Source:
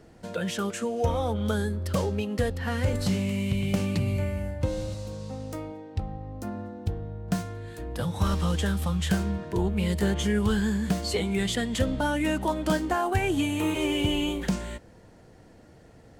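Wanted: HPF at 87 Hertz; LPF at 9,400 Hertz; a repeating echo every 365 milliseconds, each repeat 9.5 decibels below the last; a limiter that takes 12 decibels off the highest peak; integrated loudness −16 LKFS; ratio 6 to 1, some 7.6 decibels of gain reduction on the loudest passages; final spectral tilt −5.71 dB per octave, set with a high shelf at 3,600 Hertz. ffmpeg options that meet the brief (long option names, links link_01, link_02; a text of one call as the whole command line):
ffmpeg -i in.wav -af "highpass=87,lowpass=9400,highshelf=frequency=3600:gain=-7,acompressor=threshold=-29dB:ratio=6,alimiter=level_in=6dB:limit=-24dB:level=0:latency=1,volume=-6dB,aecho=1:1:365|730|1095|1460:0.335|0.111|0.0365|0.012,volume=22dB" out.wav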